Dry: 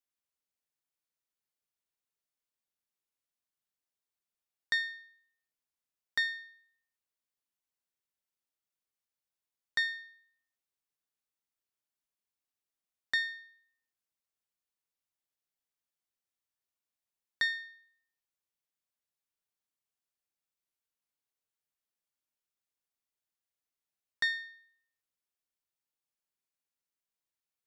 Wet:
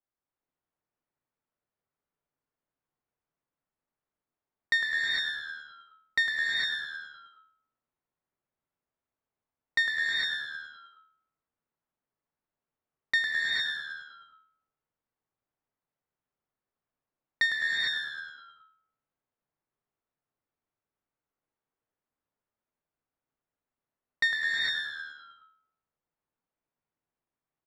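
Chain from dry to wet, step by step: on a send: frequency-shifting echo 0.105 s, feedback 59%, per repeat -76 Hz, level -8.5 dB; on the sum: low-pass opened by the level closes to 1300 Hz, open at -37.5 dBFS; dynamic EQ 4500 Hz, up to -6 dB, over -51 dBFS, Q 2.8; non-linear reverb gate 0.48 s rising, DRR -2.5 dB; gain +4.5 dB

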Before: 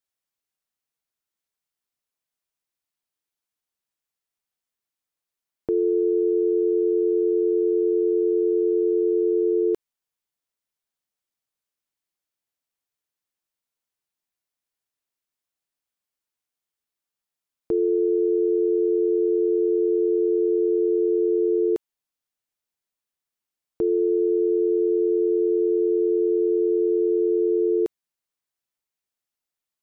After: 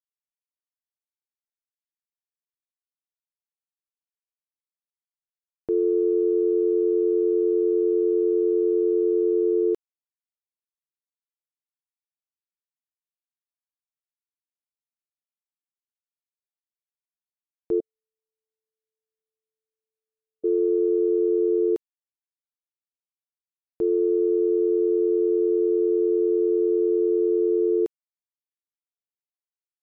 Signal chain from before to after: 17.8–20.44 steep high-pass 620 Hz 72 dB/oct; upward expander 2.5:1, over -44 dBFS

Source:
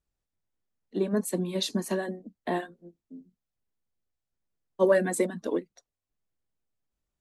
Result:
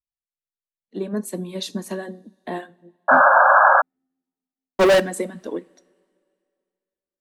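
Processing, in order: spectral noise reduction 21 dB; 3–5 sample leveller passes 5; two-slope reverb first 0.42 s, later 2.3 s, from -18 dB, DRR 18 dB; 3.08–3.82 painted sound noise 520–1700 Hz -13 dBFS

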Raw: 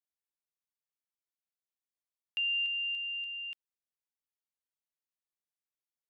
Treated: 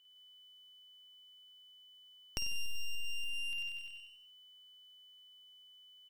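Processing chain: one-sided fold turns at -40 dBFS; feedback echo 94 ms, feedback 49%, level -3 dB; whine 3000 Hz -74 dBFS; tapped delay 52/160/213 ms -4/-8.5/-18.5 dB; compressor 3:1, threshold -50 dBFS, peak gain reduction 19 dB; gain +10.5 dB

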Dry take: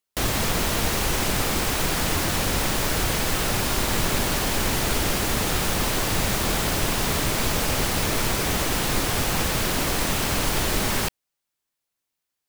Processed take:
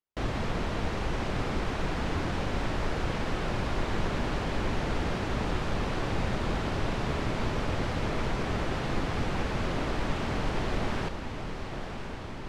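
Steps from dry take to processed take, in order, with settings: tape spacing loss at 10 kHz 27 dB; diffused feedback echo 1.07 s, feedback 70%, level -8.5 dB; gain -4.5 dB

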